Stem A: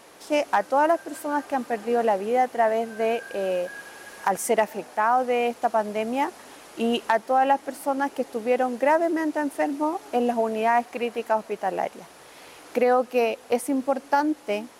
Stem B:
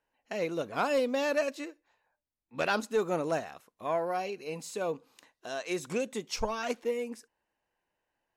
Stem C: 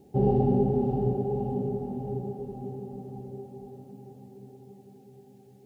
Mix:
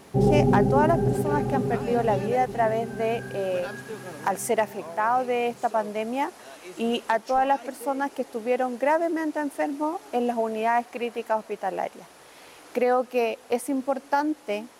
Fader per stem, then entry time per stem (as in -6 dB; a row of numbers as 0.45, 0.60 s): -2.0, -10.0, +3.0 dB; 0.00, 0.95, 0.00 s